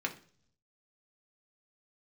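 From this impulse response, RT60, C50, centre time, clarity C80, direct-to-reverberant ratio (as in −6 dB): 0.50 s, 14.0 dB, 9 ms, 19.0 dB, 1.0 dB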